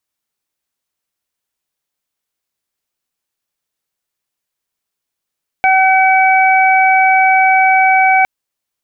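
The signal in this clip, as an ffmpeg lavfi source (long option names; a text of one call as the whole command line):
ffmpeg -f lavfi -i "aevalsrc='0.355*sin(2*PI*760*t)+0.141*sin(2*PI*1520*t)+0.251*sin(2*PI*2280*t)':duration=2.61:sample_rate=44100" out.wav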